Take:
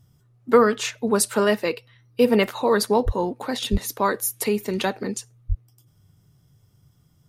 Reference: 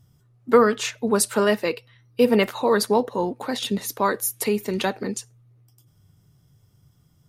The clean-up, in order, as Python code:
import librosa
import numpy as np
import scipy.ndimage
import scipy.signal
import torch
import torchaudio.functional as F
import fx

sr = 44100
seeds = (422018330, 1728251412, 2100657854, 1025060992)

y = fx.fix_deplosive(x, sr, at_s=(3.05, 3.71, 5.48))